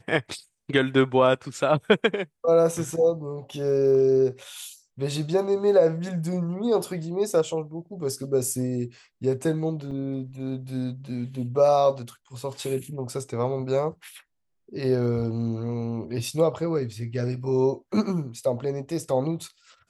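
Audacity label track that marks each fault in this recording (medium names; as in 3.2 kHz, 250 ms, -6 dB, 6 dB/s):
9.910000	9.910000	dropout 4.7 ms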